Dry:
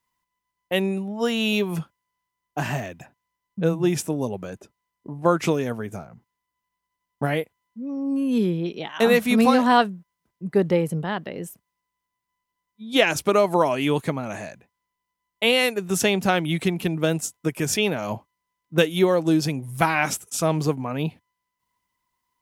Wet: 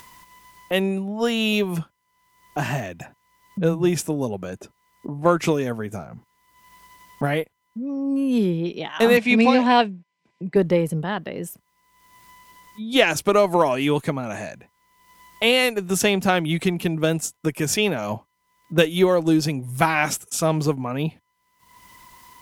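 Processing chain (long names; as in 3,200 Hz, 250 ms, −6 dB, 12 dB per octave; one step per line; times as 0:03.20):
harmonic generator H 8 −37 dB, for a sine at −2.5 dBFS
upward compression, threshold −27 dBFS
0:09.17–0:10.56: loudspeaker in its box 150–7,100 Hz, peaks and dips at 1,300 Hz −10 dB, 2,400 Hz +9 dB, 6,300 Hz −5 dB
level +1.5 dB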